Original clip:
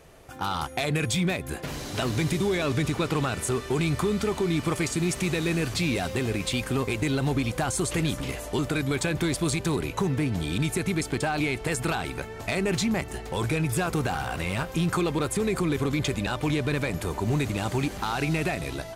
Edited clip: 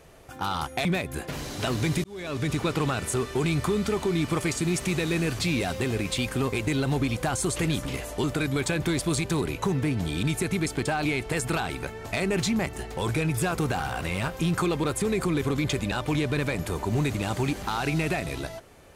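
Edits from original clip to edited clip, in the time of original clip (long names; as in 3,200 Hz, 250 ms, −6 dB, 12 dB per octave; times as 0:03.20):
0:00.85–0:01.20: remove
0:02.39–0:02.91: fade in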